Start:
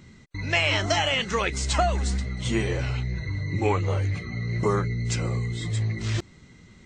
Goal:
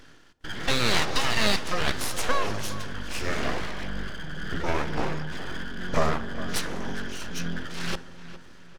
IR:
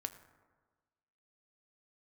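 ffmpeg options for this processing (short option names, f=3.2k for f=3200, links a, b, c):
-filter_complex "[0:a]highpass=f=250:p=1,asetrate=34398,aresample=44100,aeval=exprs='abs(val(0))':c=same,tremolo=f=2:d=0.39,asplit=2[a][b];[b]adelay=408,lowpass=f=3.5k:p=1,volume=-14dB,asplit=2[c][d];[d]adelay=408,lowpass=f=3.5k:p=1,volume=0.4,asplit=2[e][f];[f]adelay=408,lowpass=f=3.5k:p=1,volume=0.4,asplit=2[g][h];[h]adelay=408,lowpass=f=3.5k:p=1,volume=0.4[i];[a][c][e][g][i]amix=inputs=5:normalize=0,asplit=2[j][k];[1:a]atrim=start_sample=2205,asetrate=24255,aresample=44100[l];[k][l]afir=irnorm=-1:irlink=0,volume=-2.5dB[m];[j][m]amix=inputs=2:normalize=0"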